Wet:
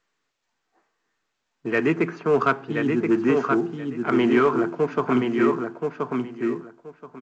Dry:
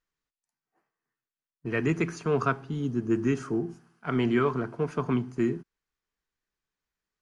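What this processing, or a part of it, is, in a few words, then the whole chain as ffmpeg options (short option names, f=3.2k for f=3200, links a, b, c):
telephone: -filter_complex "[0:a]asettb=1/sr,asplit=3[a][b][c];[a]atrim=end=1.944[d];[b]atrim=start=1.94:end=2.34,asetpts=PTS-STARTPTS,afade=t=in:d=0.004:c=qsin,afade=t=out:st=0.396:d=0.004:c=qsin,lowpass=f=2.1k:p=1[e];[c]atrim=start=2.336[f];[d][e]acrossfade=d=0.004:c1=hsin:c2=qsin[g];[g][f]acrossfade=d=0.004:c1=qsin:c2=hsin,highpass=260,lowpass=3.3k,lowshelf=f=140:g=2,asplit=2[h][i];[i]adelay=1027,lowpass=f=4.5k:p=1,volume=-4.5dB,asplit=2[j][k];[k]adelay=1027,lowpass=f=4.5k:p=1,volume=0.19,asplit=2[l][m];[m]adelay=1027,lowpass=f=4.5k:p=1,volume=0.19[n];[h][j][l][n]amix=inputs=4:normalize=0,asoftclip=type=tanh:threshold=-16dB,volume=8dB" -ar 16000 -c:a pcm_mulaw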